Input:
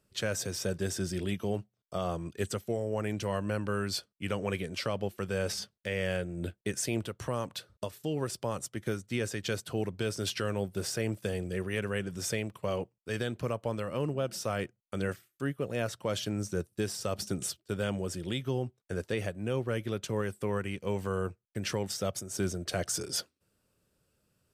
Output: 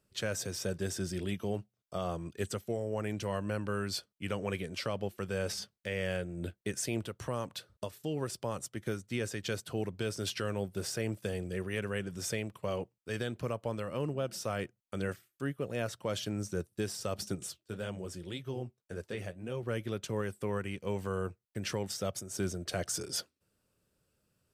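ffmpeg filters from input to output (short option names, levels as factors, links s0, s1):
-filter_complex "[0:a]asettb=1/sr,asplit=3[s0][s1][s2];[s0]atrim=end=17.354[s3];[s1]atrim=start=17.35:end=19.63,asetpts=PTS-STARTPTS,afade=t=in:d=0.004:c=qsin,afade=t=out:st=2.276:d=0.004:c=qsin,flanger=delay=1.8:depth=9.4:regen=-53:speed=1.8:shape=sinusoidal[s4];[s2]atrim=start=19.626[s5];[s3][s4]acrossfade=d=0.004:c1=hsin:c2=qsin[s6];[s6][s5]acrossfade=d=0.004:c1=qsin:c2=hsin,volume=0.75"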